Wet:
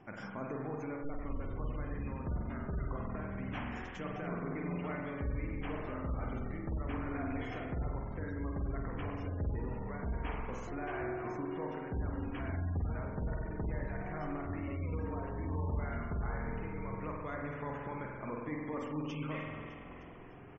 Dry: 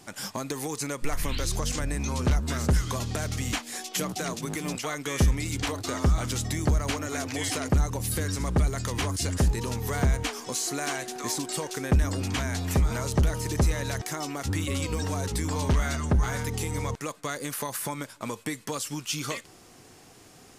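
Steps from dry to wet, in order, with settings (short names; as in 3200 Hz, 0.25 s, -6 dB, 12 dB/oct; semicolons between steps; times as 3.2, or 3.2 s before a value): bell 4200 Hz -12.5 dB 0.8 oct; frequency-shifting echo 0.304 s, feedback 61%, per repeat -43 Hz, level -16 dB; reverse; compressor 5:1, threshold -35 dBFS, peak gain reduction 15.5 dB; reverse; air absorption 200 m; spring tank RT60 1.8 s, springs 46 ms, chirp 75 ms, DRR -1 dB; spectral gate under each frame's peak -30 dB strong; gain -3 dB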